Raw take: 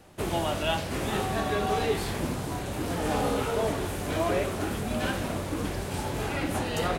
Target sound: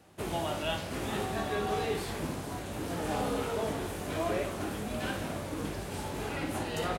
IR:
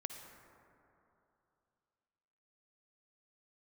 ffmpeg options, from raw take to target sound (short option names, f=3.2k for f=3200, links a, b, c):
-filter_complex "[0:a]highpass=58,asplit=2[a][b];[b]adelay=19,volume=-11.5dB[c];[a][c]amix=inputs=2:normalize=0,asplit=2[d][e];[1:a]atrim=start_sample=2205,adelay=58[f];[e][f]afir=irnorm=-1:irlink=0,volume=-7.5dB[g];[d][g]amix=inputs=2:normalize=0,volume=-5.5dB"